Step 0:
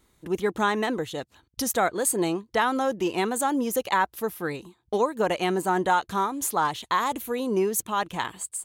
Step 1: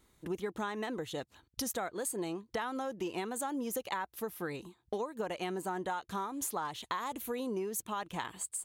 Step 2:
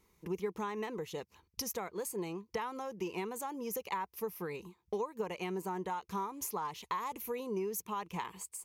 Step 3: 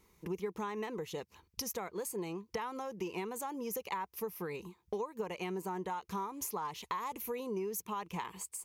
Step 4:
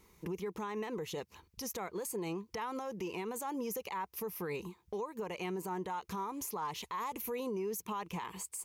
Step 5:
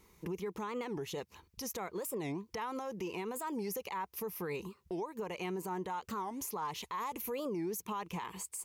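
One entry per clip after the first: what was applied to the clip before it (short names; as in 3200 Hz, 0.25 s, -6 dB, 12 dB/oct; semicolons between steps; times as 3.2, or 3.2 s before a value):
compressor, threshold -30 dBFS, peak gain reduction 12 dB; gain -3.5 dB
ripple EQ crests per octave 0.81, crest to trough 9 dB; gain -3 dB
compressor 1.5:1, threshold -44 dBFS, peak gain reduction 5 dB; gain +3 dB
limiter -34 dBFS, peak gain reduction 11 dB; gain +3.5 dB
record warp 45 rpm, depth 250 cents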